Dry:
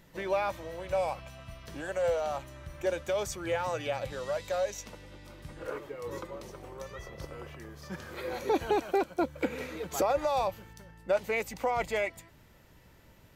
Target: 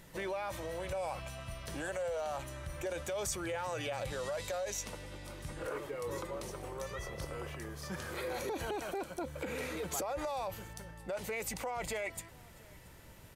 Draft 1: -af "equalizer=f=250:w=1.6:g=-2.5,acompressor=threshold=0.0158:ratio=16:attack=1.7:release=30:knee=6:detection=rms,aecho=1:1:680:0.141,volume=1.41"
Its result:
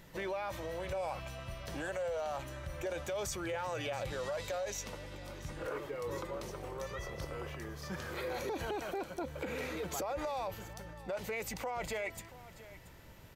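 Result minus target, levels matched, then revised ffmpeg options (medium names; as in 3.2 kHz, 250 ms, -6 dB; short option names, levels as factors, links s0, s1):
echo-to-direct +8 dB; 8 kHz band -3.0 dB
-af "equalizer=f=250:w=1.6:g=-2.5,acompressor=threshold=0.0158:ratio=16:attack=1.7:release=30:knee=6:detection=rms,equalizer=f=9500:w=1.5:g=8,aecho=1:1:680:0.0562,volume=1.41"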